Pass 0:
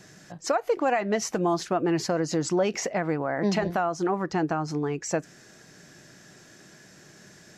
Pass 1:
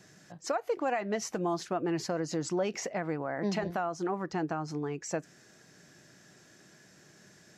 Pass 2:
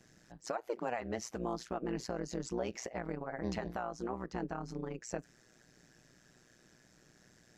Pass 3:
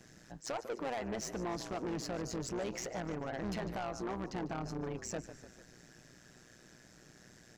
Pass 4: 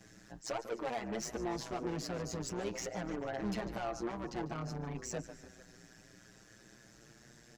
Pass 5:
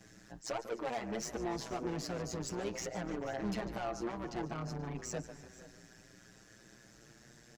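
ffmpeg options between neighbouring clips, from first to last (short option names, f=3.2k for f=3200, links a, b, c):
-af "highpass=52,volume=-6.5dB"
-af "lowshelf=f=73:g=11,tremolo=f=120:d=0.919,volume=-3dB"
-filter_complex "[0:a]asplit=6[a][b][c][d][e][f];[b]adelay=148,afreqshift=-43,volume=-16.5dB[g];[c]adelay=296,afreqshift=-86,volume=-21.7dB[h];[d]adelay=444,afreqshift=-129,volume=-26.9dB[i];[e]adelay=592,afreqshift=-172,volume=-32.1dB[j];[f]adelay=740,afreqshift=-215,volume=-37.3dB[k];[a][g][h][i][j][k]amix=inputs=6:normalize=0,asoftclip=type=tanh:threshold=-38dB,volume=5dB"
-filter_complex "[0:a]asplit=2[a][b];[b]adelay=7.2,afreqshift=0.32[c];[a][c]amix=inputs=2:normalize=1,volume=3dB"
-af "aecho=1:1:481:0.133"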